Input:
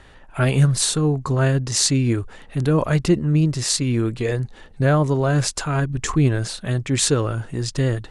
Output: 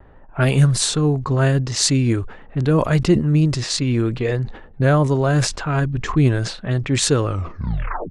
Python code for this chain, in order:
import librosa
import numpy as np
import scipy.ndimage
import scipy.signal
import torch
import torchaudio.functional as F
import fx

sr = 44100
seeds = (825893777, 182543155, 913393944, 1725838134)

y = fx.tape_stop_end(x, sr, length_s=0.84)
y = fx.vibrato(y, sr, rate_hz=0.77, depth_cents=22.0)
y = fx.env_lowpass(y, sr, base_hz=960.0, full_db=-13.5)
y = fx.sustainer(y, sr, db_per_s=110.0)
y = F.gain(torch.from_numpy(y), 1.5).numpy()